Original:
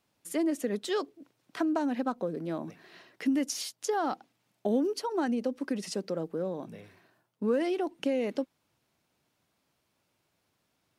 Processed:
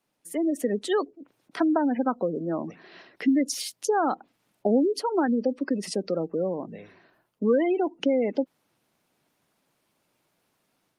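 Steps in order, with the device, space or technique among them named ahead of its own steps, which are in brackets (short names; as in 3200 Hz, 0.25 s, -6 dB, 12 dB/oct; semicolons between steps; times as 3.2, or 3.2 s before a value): noise-suppressed video call (HPF 150 Hz 12 dB/oct; spectral gate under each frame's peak -25 dB strong; AGC gain up to 6 dB; Opus 32 kbps 48000 Hz)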